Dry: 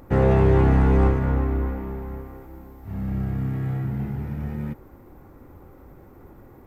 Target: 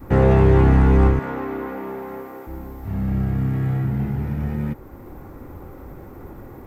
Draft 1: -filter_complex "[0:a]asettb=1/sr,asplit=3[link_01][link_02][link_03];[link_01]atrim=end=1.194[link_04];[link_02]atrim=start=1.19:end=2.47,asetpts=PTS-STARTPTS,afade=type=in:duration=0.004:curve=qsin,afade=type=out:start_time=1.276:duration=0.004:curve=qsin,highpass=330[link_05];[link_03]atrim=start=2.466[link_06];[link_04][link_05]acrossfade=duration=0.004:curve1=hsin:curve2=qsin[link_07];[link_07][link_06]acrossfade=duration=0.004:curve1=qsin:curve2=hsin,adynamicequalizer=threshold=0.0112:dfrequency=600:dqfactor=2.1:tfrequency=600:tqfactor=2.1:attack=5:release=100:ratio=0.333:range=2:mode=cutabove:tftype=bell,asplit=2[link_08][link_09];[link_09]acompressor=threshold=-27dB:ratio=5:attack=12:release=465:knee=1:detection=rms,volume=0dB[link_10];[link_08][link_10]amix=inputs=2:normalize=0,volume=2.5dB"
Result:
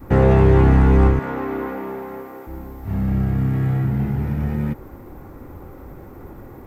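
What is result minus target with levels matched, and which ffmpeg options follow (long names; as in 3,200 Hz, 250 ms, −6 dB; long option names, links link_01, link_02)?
downward compressor: peak gain reduction −7 dB
-filter_complex "[0:a]asettb=1/sr,asplit=3[link_01][link_02][link_03];[link_01]atrim=end=1.194[link_04];[link_02]atrim=start=1.19:end=2.47,asetpts=PTS-STARTPTS,afade=type=in:duration=0.004:curve=qsin,afade=type=out:start_time=1.276:duration=0.004:curve=qsin,highpass=330[link_05];[link_03]atrim=start=2.466[link_06];[link_04][link_05]acrossfade=duration=0.004:curve1=hsin:curve2=qsin[link_07];[link_07][link_06]acrossfade=duration=0.004:curve1=qsin:curve2=hsin,adynamicequalizer=threshold=0.0112:dfrequency=600:dqfactor=2.1:tfrequency=600:tqfactor=2.1:attack=5:release=100:ratio=0.333:range=2:mode=cutabove:tftype=bell,asplit=2[link_08][link_09];[link_09]acompressor=threshold=-35.5dB:ratio=5:attack=12:release=465:knee=1:detection=rms,volume=0dB[link_10];[link_08][link_10]amix=inputs=2:normalize=0,volume=2.5dB"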